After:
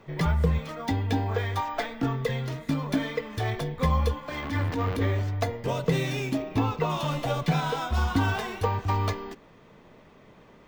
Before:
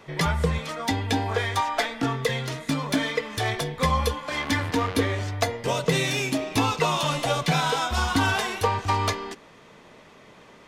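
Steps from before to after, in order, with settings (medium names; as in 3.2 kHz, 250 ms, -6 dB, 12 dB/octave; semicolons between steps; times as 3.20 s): 4.40–5.22 s: transient shaper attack -9 dB, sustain +6 dB; 6.42–6.90 s: treble shelf 4.3 kHz -11 dB; careless resampling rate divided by 2×, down none, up hold; tilt EQ -2 dB/octave; trim -5 dB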